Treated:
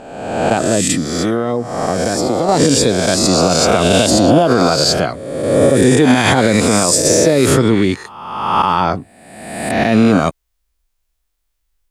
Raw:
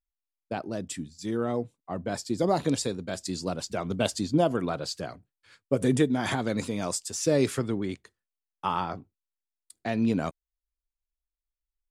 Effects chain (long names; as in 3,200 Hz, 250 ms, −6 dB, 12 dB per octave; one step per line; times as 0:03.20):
peak hold with a rise ahead of every peak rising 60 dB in 1.21 s
0:00.93–0:02.49: downward compressor 12 to 1, threshold −29 dBFS, peak gain reduction 12.5 dB
boost into a limiter +17.5 dB
level −1 dB